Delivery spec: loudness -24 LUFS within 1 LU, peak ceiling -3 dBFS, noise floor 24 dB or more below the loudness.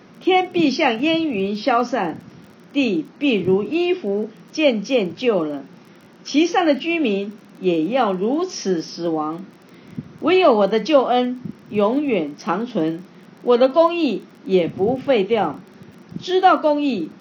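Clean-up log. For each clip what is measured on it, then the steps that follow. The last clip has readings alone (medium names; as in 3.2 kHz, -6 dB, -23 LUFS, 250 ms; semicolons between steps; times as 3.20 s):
tick rate 27 per s; loudness -19.5 LUFS; peak level -1.5 dBFS; loudness target -24.0 LUFS
-> de-click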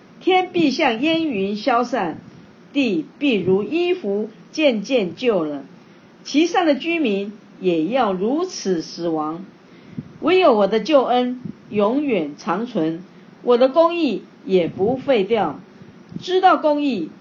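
tick rate 0 per s; loudness -19.5 LUFS; peak level -1.5 dBFS; loudness target -24.0 LUFS
-> trim -4.5 dB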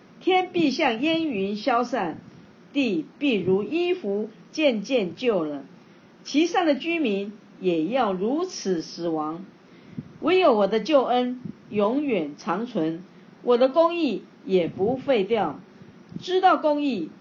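loudness -24.0 LUFS; peak level -6.0 dBFS; noise floor -51 dBFS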